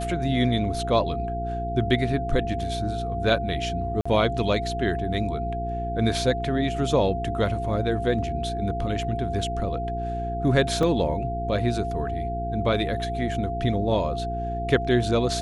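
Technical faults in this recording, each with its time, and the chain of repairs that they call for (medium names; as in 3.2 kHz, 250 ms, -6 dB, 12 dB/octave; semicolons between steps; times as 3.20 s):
hum 60 Hz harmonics 7 -31 dBFS
whine 690 Hz -29 dBFS
4.01–4.05 s: dropout 45 ms
10.83 s: dropout 2.5 ms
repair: de-hum 60 Hz, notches 7; band-stop 690 Hz, Q 30; interpolate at 4.01 s, 45 ms; interpolate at 10.83 s, 2.5 ms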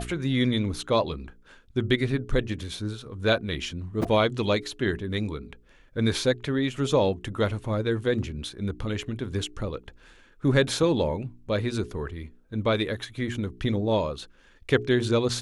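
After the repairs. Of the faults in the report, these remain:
nothing left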